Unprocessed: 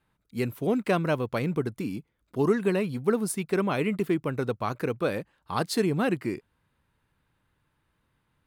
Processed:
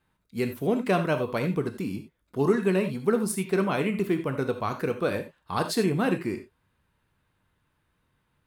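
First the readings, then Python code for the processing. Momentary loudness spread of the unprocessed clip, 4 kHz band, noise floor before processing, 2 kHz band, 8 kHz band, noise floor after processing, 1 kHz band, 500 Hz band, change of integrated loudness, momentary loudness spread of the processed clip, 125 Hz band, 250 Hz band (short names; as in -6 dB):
10 LU, +1.0 dB, -75 dBFS, +1.0 dB, +1.0 dB, -74 dBFS, +1.0 dB, +1.0 dB, +1.0 dB, 10 LU, +0.5 dB, +1.0 dB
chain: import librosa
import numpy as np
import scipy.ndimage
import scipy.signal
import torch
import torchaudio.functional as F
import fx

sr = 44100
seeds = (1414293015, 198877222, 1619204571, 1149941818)

y = fx.rev_gated(x, sr, seeds[0], gate_ms=110, shape='flat', drr_db=6.0)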